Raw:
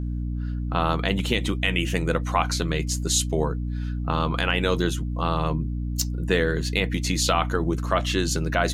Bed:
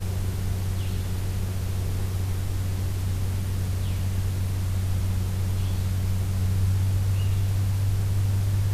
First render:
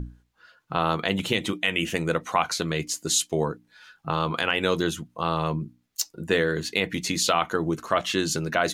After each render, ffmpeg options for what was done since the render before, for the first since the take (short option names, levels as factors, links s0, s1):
-af "bandreject=f=60:t=h:w=6,bandreject=f=120:t=h:w=6,bandreject=f=180:t=h:w=6,bandreject=f=240:t=h:w=6,bandreject=f=300:t=h:w=6"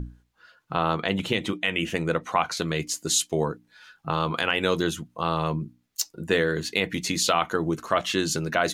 -filter_complex "[0:a]asettb=1/sr,asplit=3[s0][s1][s2];[s0]atrim=end=0.764[s3];[s1]atrim=start=0.76:end=2.57,asetpts=PTS-STARTPTS,afade=t=in:d=0.004:c=qsin,afade=t=out:st=1.806:d=0.004:c=qsin,highshelf=f=5300:g=-7.5[s4];[s2]atrim=start=2.566[s5];[s3][s4]acrossfade=d=0.004:c1=hsin:c2=qsin[s6];[s6][s5]acrossfade=d=0.004:c1=qsin:c2=hsin"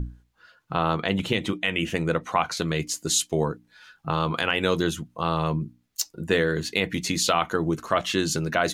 -af "lowshelf=f=140:g=5"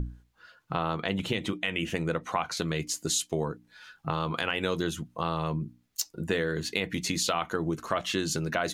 -af "acompressor=threshold=0.0355:ratio=2"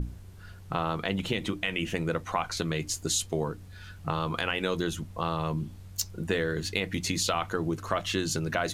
-filter_complex "[1:a]volume=0.0944[s0];[0:a][s0]amix=inputs=2:normalize=0"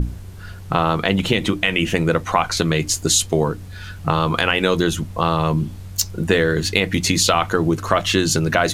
-af "volume=3.76,alimiter=limit=0.891:level=0:latency=1"